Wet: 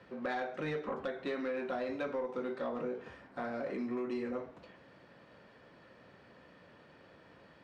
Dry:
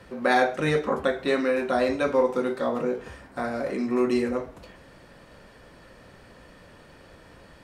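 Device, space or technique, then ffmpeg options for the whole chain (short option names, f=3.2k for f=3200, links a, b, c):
AM radio: -af "highpass=120,lowpass=4k,acompressor=threshold=-24dB:ratio=6,asoftclip=type=tanh:threshold=-19.5dB,volume=-7.5dB"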